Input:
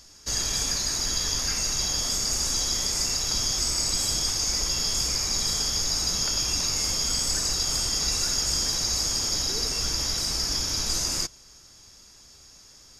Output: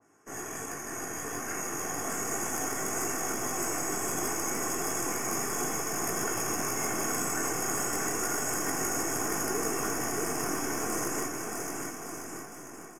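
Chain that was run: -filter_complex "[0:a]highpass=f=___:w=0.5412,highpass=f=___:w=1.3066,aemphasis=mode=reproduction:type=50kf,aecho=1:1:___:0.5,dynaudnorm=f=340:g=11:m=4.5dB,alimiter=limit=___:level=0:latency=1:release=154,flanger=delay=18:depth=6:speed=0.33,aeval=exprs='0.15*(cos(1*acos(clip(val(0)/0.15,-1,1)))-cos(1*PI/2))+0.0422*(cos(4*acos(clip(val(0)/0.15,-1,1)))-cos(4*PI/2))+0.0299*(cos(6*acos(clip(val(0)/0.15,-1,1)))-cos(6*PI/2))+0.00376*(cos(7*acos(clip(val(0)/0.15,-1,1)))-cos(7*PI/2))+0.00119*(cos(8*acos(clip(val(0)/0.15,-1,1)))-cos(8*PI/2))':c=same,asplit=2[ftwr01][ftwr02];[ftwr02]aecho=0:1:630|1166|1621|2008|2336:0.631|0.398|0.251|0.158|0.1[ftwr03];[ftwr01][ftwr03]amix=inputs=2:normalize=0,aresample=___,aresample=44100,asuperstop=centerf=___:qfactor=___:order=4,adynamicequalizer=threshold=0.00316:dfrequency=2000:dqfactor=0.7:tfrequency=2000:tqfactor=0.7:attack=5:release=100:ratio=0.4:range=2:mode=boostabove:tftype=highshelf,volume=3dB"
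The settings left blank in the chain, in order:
150, 150, 2.7, -15.5dB, 32000, 4100, 0.6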